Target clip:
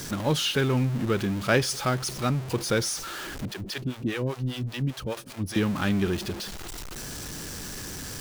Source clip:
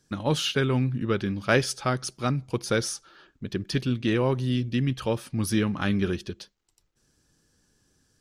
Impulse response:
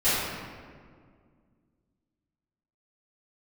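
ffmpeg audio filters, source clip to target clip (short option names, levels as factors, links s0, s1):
-filter_complex "[0:a]aeval=exprs='val(0)+0.5*0.0335*sgn(val(0))':c=same,asettb=1/sr,asplit=3[s0][s1][s2];[s0]atrim=end=3.454[s3];[s1]atrim=start=3.45:end=5.56,asetpts=PTS-STARTPTS,afade=t=in:d=0.004:c=qsin,afade=t=out:st=2.106:d=0.004:c=qsin,acrossover=split=470[s4][s5];[s4]aeval=exprs='val(0)*(1-1/2+1/2*cos(2*PI*5*n/s))':c=same[s6];[s5]aeval=exprs='val(0)*(1-1/2-1/2*cos(2*PI*5*n/s))':c=same[s7];[s6][s7]amix=inputs=2:normalize=0[s8];[s2]atrim=start=5.556[s9];[s3][s8]acrossfade=d=0.004:c1=hsin:c2=qsin[s10];[s10][s9]acrossfade=d=0.004:c1=qsin:c2=hsin,volume=0.841"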